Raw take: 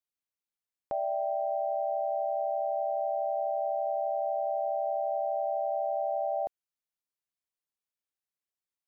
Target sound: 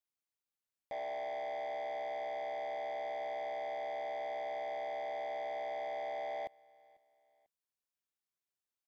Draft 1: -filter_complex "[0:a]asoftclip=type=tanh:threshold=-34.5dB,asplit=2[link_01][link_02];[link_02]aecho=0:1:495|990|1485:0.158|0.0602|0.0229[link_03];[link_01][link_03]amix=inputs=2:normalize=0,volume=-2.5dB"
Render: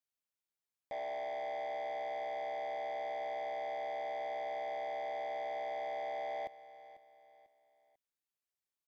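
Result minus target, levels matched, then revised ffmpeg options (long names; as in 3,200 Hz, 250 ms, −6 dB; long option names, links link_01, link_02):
echo-to-direct +9.5 dB
-filter_complex "[0:a]asoftclip=type=tanh:threshold=-34.5dB,asplit=2[link_01][link_02];[link_02]aecho=0:1:495|990:0.0531|0.0202[link_03];[link_01][link_03]amix=inputs=2:normalize=0,volume=-2.5dB"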